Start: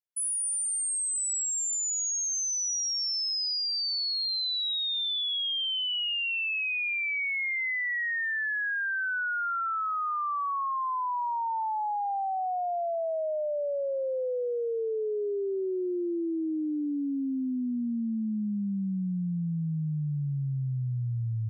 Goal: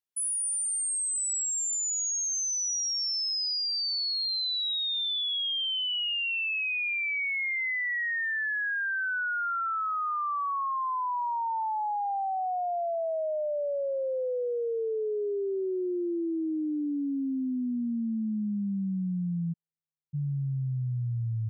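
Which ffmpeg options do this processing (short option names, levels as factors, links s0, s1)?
-filter_complex "[0:a]asplit=3[s0][s1][s2];[s0]afade=t=out:st=19.52:d=0.02[s3];[s1]asuperpass=centerf=420:order=8:qfactor=4,afade=t=in:st=19.52:d=0.02,afade=t=out:st=20.13:d=0.02[s4];[s2]afade=t=in:st=20.13:d=0.02[s5];[s3][s4][s5]amix=inputs=3:normalize=0"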